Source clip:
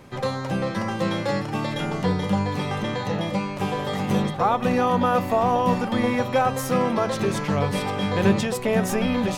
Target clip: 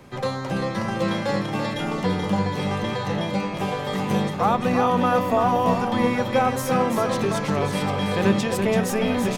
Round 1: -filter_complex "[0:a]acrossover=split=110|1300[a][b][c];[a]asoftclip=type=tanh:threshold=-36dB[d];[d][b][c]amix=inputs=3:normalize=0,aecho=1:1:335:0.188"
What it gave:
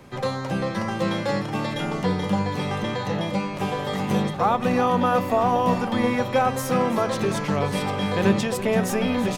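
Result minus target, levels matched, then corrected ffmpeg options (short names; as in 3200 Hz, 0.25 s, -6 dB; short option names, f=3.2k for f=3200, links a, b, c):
echo-to-direct -8 dB
-filter_complex "[0:a]acrossover=split=110|1300[a][b][c];[a]asoftclip=type=tanh:threshold=-36dB[d];[d][b][c]amix=inputs=3:normalize=0,aecho=1:1:335:0.473"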